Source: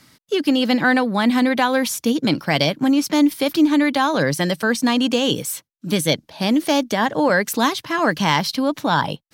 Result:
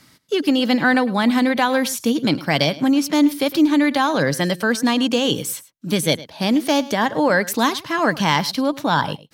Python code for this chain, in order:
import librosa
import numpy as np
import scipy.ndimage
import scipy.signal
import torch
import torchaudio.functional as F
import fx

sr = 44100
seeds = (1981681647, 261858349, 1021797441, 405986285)

y = x + 10.0 ** (-18.5 / 20.0) * np.pad(x, (int(106 * sr / 1000.0), 0))[:len(x)]